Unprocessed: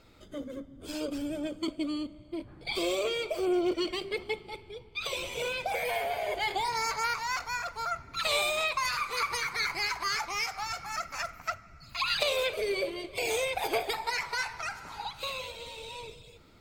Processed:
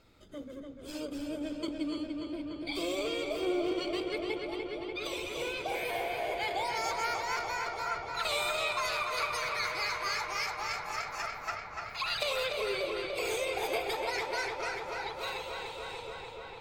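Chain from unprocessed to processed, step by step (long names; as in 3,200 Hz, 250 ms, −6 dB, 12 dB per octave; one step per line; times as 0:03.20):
feedback echo with a low-pass in the loop 293 ms, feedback 82%, low-pass 5,000 Hz, level −4.5 dB
level −4.5 dB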